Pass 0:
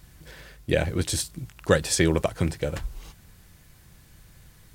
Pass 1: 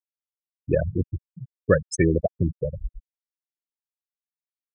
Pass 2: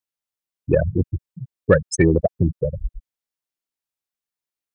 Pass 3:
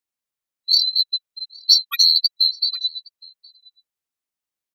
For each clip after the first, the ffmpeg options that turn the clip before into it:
ffmpeg -i in.wav -af "afftfilt=real='re*gte(hypot(re,im),0.2)':imag='im*gte(hypot(re,im),0.2)':win_size=1024:overlap=0.75,volume=2dB" out.wav
ffmpeg -i in.wav -af "acontrast=21" out.wav
ffmpeg -i in.wav -filter_complex "[0:a]afftfilt=real='real(if(lt(b,736),b+184*(1-2*mod(floor(b/184),2)),b),0)':imag='imag(if(lt(b,736),b+184*(1-2*mod(floor(b/184),2)),b),0)':win_size=2048:overlap=0.75,asplit=2[link_01][link_02];[link_02]adelay=816.3,volume=-17dB,highshelf=frequency=4000:gain=-18.4[link_03];[link_01][link_03]amix=inputs=2:normalize=0,asplit=2[link_04][link_05];[link_05]asoftclip=type=hard:threshold=-14dB,volume=-11.5dB[link_06];[link_04][link_06]amix=inputs=2:normalize=0,volume=-1dB" out.wav

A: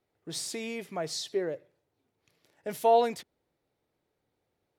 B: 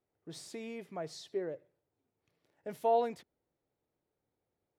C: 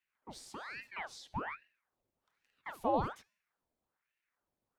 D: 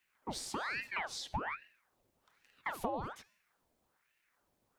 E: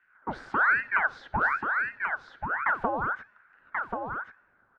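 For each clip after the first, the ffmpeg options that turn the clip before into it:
ffmpeg -i in.wav -af "highshelf=frequency=2300:gain=-9.5,volume=-5.5dB" out.wav
ffmpeg -i in.wav -af "bandreject=frequency=411.4:width_type=h:width=4,bandreject=frequency=822.8:width_type=h:width=4,bandreject=frequency=1234.2:width_type=h:width=4,bandreject=frequency=1645.6:width_type=h:width=4,bandreject=frequency=2057:width_type=h:width=4,bandreject=frequency=2468.4:width_type=h:width=4,bandreject=frequency=2879.8:width_type=h:width=4,bandreject=frequency=3291.2:width_type=h:width=4,bandreject=frequency=3702.6:width_type=h:width=4,bandreject=frequency=4114:width_type=h:width=4,bandreject=frequency=4525.4:width_type=h:width=4,bandreject=frequency=4936.8:width_type=h:width=4,bandreject=frequency=5348.2:width_type=h:width=4,bandreject=frequency=5759.6:width_type=h:width=4,bandreject=frequency=6171:width_type=h:width=4,bandreject=frequency=6582.4:width_type=h:width=4,bandreject=frequency=6993.8:width_type=h:width=4,bandreject=frequency=7405.2:width_type=h:width=4,bandreject=frequency=7816.6:width_type=h:width=4,bandreject=frequency=8228:width_type=h:width=4,bandreject=frequency=8639.4:width_type=h:width=4,bandreject=frequency=9050.8:width_type=h:width=4,bandreject=frequency=9462.2:width_type=h:width=4,bandreject=frequency=9873.6:width_type=h:width=4,bandreject=frequency=10285:width_type=h:width=4,bandreject=frequency=10696.4:width_type=h:width=4,bandreject=frequency=11107.8:width_type=h:width=4,bandreject=frequency=11519.2:width_type=h:width=4,bandreject=frequency=11930.6:width_type=h:width=4,bandreject=frequency=12342:width_type=h:width=4,bandreject=frequency=12753.4:width_type=h:width=4,aeval=exprs='val(0)*sin(2*PI*1200*n/s+1200*0.9/1.2*sin(2*PI*1.2*n/s))':channel_layout=same" out.wav
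ffmpeg -i in.wav -af "acompressor=threshold=-43dB:ratio=16,volume=9.5dB" out.wav
ffmpeg -i in.wav -filter_complex "[0:a]lowpass=frequency=1500:width_type=q:width=8,asplit=2[link_01][link_02];[link_02]aecho=0:1:1085:0.562[link_03];[link_01][link_03]amix=inputs=2:normalize=0,volume=5.5dB" out.wav

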